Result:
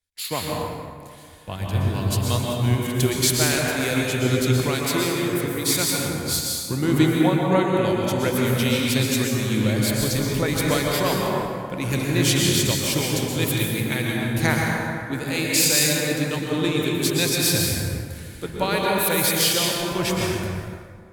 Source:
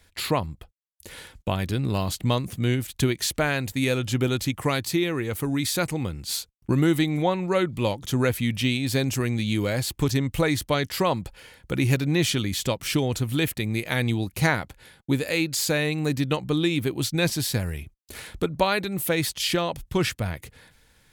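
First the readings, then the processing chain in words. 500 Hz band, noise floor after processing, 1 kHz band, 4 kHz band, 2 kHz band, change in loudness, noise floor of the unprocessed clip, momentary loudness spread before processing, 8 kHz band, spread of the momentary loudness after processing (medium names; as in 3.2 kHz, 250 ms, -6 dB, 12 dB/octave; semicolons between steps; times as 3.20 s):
+2.5 dB, -39 dBFS, +3.0 dB, +5.0 dB, +3.0 dB, +3.5 dB, -63 dBFS, 7 LU, +8.5 dB, 10 LU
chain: treble shelf 3.4 kHz +8.5 dB; plate-style reverb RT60 3.6 s, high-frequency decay 0.45×, pre-delay 105 ms, DRR -4 dB; three bands expanded up and down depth 70%; trim -3.5 dB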